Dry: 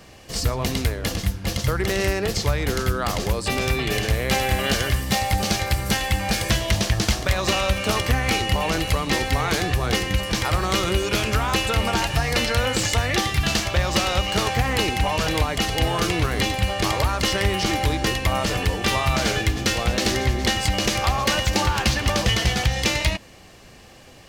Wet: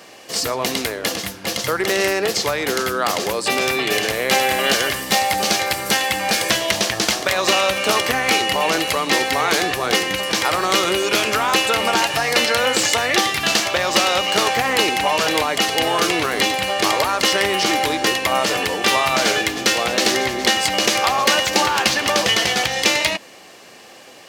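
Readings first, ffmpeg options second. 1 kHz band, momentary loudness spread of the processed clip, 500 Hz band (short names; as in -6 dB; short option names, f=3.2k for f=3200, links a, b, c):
+6.0 dB, 4 LU, +5.0 dB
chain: -af "highpass=320,volume=6dB"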